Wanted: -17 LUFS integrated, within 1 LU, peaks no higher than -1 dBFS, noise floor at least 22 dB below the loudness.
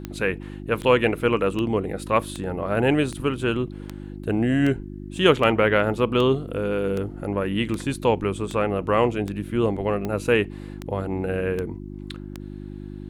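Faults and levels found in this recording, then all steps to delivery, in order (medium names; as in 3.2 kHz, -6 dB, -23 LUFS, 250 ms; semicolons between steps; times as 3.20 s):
clicks found 17; hum 50 Hz; highest harmonic 350 Hz; hum level -33 dBFS; loudness -23.5 LUFS; peak level -3.0 dBFS; loudness target -17.0 LUFS
-> de-click; de-hum 50 Hz, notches 7; trim +6.5 dB; peak limiter -1 dBFS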